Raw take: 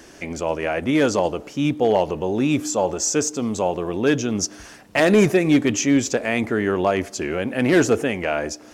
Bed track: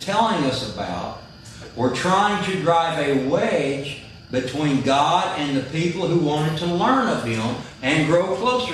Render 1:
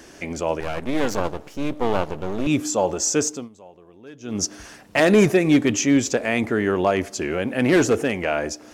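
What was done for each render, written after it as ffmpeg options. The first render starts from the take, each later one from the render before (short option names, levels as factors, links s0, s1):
-filter_complex "[0:a]asettb=1/sr,asplit=3[s0][s1][s2];[s0]atrim=end=0.604[s3];[s1]atrim=start=0.6:end=2.47,asetpts=PTS-STARTPTS,afade=t=in:d=0.004:c=qsin,afade=t=out:st=1.866:d=0.004:c=qsin,aeval=exprs='max(val(0),0)':c=same[s4];[s2]atrim=start=2.466[s5];[s3][s4]acrossfade=d=0.004:c1=hsin:c2=qsin[s6];[s6][s5]acrossfade=d=0.004:c1=qsin:c2=hsin,asettb=1/sr,asplit=3[s7][s8][s9];[s7]atrim=end=7.764[s10];[s8]atrim=start=7.76:end=8.23,asetpts=PTS-STARTPTS,afade=t=in:d=0.004:c=qsin,afade=t=out:st=0.466:d=0.004:c=qsin,asoftclip=type=hard:threshold=0.266[s11];[s9]atrim=start=8.226[s12];[s10][s11]acrossfade=d=0.004:c1=hsin:c2=qsin[s13];[s13][s12]acrossfade=d=0.004:c1=qsin:c2=hsin,asplit=3[s14][s15][s16];[s14]atrim=end=3.49,asetpts=PTS-STARTPTS,afade=t=out:st=3.27:d=0.22:silence=0.0668344[s17];[s15]atrim=start=3.49:end=4.2,asetpts=PTS-STARTPTS,volume=0.0668[s18];[s16]atrim=start=4.2,asetpts=PTS-STARTPTS,afade=t=in:d=0.22:silence=0.0668344[s19];[s17][s18][s19]concat=n=3:v=0:a=1"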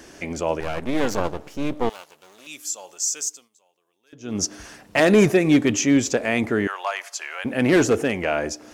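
-filter_complex "[0:a]asettb=1/sr,asplit=3[s0][s1][s2];[s0]atrim=end=1.894[s3];[s1]atrim=start=1.89:end=4.13,asetpts=PTS-STARTPTS,afade=t=in:d=0.004:c=qsin,afade=t=out:st=2.236:d=0.004:c=qsin,aderivative[s4];[s2]atrim=start=4.126[s5];[s3][s4]acrossfade=d=0.004:c1=hsin:c2=qsin[s6];[s6][s5]acrossfade=d=0.004:c1=qsin:c2=hsin,asettb=1/sr,asplit=3[s7][s8][s9];[s7]atrim=end=6.674[s10];[s8]atrim=start=6.67:end=7.45,asetpts=PTS-STARTPTS,afade=t=in:d=0.004:c=qsin,afade=t=out:st=0.776:d=0.004:c=qsin,highpass=f=830:w=0.5412,highpass=f=830:w=1.3066[s11];[s9]atrim=start=7.446[s12];[s10][s11]acrossfade=d=0.004:c1=hsin:c2=qsin[s13];[s13][s12]acrossfade=d=0.004:c1=qsin:c2=hsin"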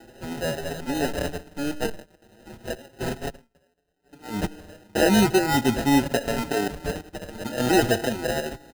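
-filter_complex "[0:a]acrusher=samples=39:mix=1:aa=0.000001,asplit=2[s0][s1];[s1]adelay=5.7,afreqshift=0.37[s2];[s0][s2]amix=inputs=2:normalize=1"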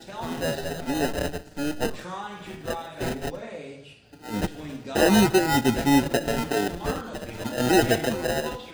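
-filter_complex "[1:a]volume=0.133[s0];[0:a][s0]amix=inputs=2:normalize=0"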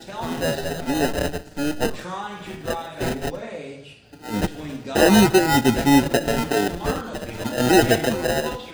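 -af "volume=1.58"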